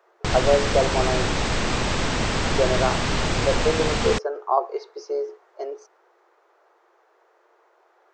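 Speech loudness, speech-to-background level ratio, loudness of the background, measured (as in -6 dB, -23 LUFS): -25.5 LUFS, -1.5 dB, -24.0 LUFS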